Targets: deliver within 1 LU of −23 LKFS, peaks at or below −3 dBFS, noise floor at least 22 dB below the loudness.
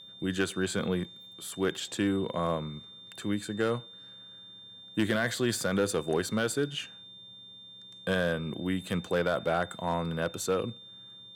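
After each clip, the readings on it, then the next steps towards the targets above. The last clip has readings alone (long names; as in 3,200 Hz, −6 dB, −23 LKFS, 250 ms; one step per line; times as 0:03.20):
share of clipped samples 0.3%; peaks flattened at −19.0 dBFS; interfering tone 3,600 Hz; level of the tone −47 dBFS; integrated loudness −31.0 LKFS; sample peak −19.0 dBFS; target loudness −23.0 LKFS
→ clipped peaks rebuilt −19 dBFS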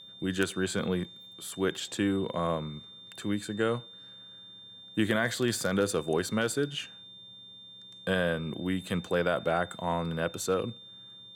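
share of clipped samples 0.0%; interfering tone 3,600 Hz; level of the tone −47 dBFS
→ notch filter 3,600 Hz, Q 30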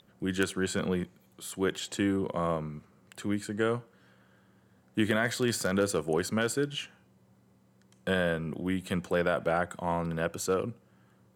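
interfering tone none found; integrated loudness −31.0 LKFS; sample peak −10.0 dBFS; target loudness −23.0 LKFS
→ level +8 dB
brickwall limiter −3 dBFS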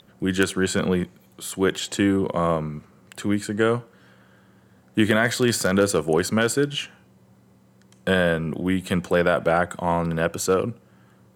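integrated loudness −23.0 LKFS; sample peak −3.0 dBFS; background noise floor −56 dBFS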